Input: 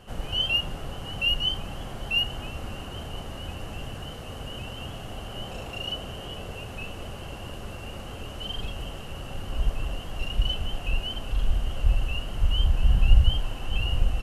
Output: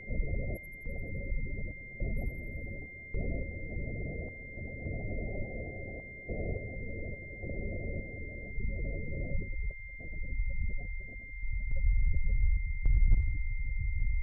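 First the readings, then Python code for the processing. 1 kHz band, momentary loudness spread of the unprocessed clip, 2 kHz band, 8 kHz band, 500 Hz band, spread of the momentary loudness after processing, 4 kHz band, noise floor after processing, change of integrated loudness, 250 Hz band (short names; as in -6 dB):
-19.5 dB, 15 LU, -5.5 dB, n/a, -4.0 dB, 10 LU, under -40 dB, -46 dBFS, -8.0 dB, -3.5 dB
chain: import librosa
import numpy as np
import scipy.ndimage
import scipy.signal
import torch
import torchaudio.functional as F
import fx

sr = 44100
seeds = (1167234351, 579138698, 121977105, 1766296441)

p1 = scipy.signal.sosfilt(scipy.signal.cheby2(4, 50, [1200.0, 3500.0], 'bandstop', fs=sr, output='sos'), x)
p2 = fx.hum_notches(p1, sr, base_hz=60, count=4)
p3 = fx.echo_feedback(p2, sr, ms=761, feedback_pct=25, wet_db=-10.0)
p4 = fx.over_compress(p3, sr, threshold_db=-27.0, ratio=-1.0)
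p5 = p3 + (p4 * librosa.db_to_amplitude(1.0))
p6 = fx.spec_gate(p5, sr, threshold_db=-20, keep='strong')
p7 = np.clip(10.0 ** (10.0 / 20.0) * p6, -1.0, 1.0) / 10.0 ** (10.0 / 20.0)
p8 = fx.tremolo_random(p7, sr, seeds[0], hz=3.5, depth_pct=90)
p9 = p8 + fx.echo_wet_highpass(p8, sr, ms=86, feedback_pct=63, hz=1700.0, wet_db=-4.0, dry=0)
p10 = p9 + 10.0 ** (-40.0 / 20.0) * np.sin(2.0 * np.pi * 2100.0 * np.arange(len(p9)) / sr)
y = p10 * librosa.db_to_amplitude(-5.5)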